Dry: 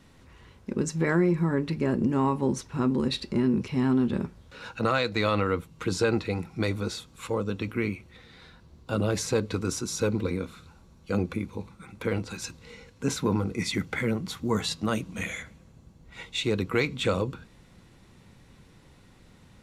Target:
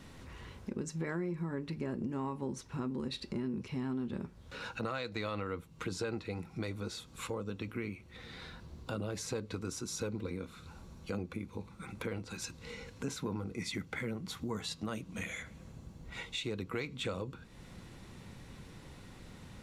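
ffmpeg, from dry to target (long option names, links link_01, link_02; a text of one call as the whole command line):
ffmpeg -i in.wav -af "acompressor=threshold=-46dB:ratio=2.5,volume=3.5dB" out.wav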